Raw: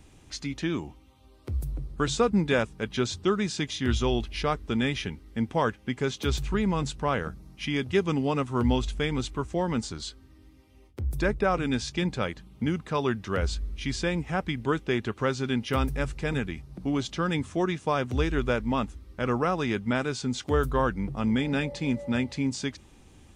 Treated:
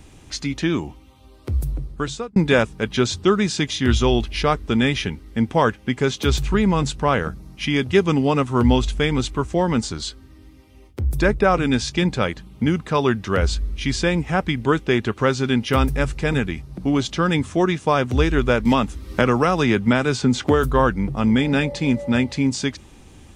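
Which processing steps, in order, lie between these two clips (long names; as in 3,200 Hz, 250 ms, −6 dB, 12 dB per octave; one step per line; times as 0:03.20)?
0:01.68–0:02.36: fade out
0:18.65–0:20.63: multiband upward and downward compressor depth 100%
level +8 dB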